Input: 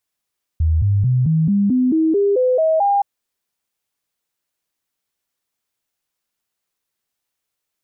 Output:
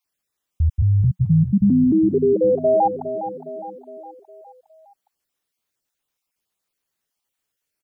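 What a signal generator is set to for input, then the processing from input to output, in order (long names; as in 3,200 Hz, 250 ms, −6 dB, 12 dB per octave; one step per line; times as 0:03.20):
stepped sweep 79.8 Hz up, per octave 3, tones 11, 0.22 s, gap 0.00 s −12.5 dBFS
time-frequency cells dropped at random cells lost 26%
dynamic equaliser 180 Hz, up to +5 dB, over −32 dBFS, Q 6
on a send: repeating echo 411 ms, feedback 51%, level −11 dB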